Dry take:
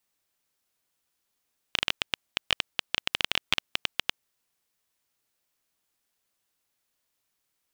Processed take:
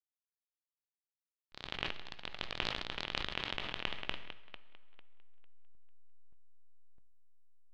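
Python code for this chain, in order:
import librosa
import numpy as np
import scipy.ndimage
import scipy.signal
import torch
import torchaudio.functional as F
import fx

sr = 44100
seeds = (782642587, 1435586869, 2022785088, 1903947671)

p1 = fx.auto_swell(x, sr, attack_ms=498.0)
p2 = fx.rider(p1, sr, range_db=5, speed_s=0.5)
p3 = p1 + F.gain(torch.from_numpy(p2), 3.0).numpy()
p4 = fx.backlash(p3, sr, play_db=-38.5)
p5 = p4 + fx.echo_tape(p4, sr, ms=449, feedback_pct=28, wet_db=-9.5, lp_hz=4900.0, drive_db=14.0, wow_cents=12, dry=0)
p6 = fx.echo_pitch(p5, sr, ms=94, semitones=2, count=3, db_per_echo=-3.0)
p7 = fx.spacing_loss(p6, sr, db_at_10k=28)
p8 = fx.rev_fdn(p7, sr, rt60_s=2.2, lf_ratio=0.85, hf_ratio=0.8, size_ms=48.0, drr_db=15.0)
p9 = fx.sustainer(p8, sr, db_per_s=32.0)
y = F.gain(torch.from_numpy(p9), 6.5).numpy()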